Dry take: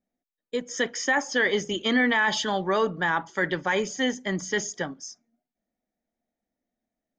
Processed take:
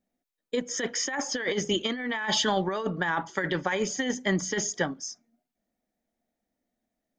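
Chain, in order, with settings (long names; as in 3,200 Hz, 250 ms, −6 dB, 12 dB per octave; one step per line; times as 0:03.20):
compressor whose output falls as the input rises −26 dBFS, ratio −0.5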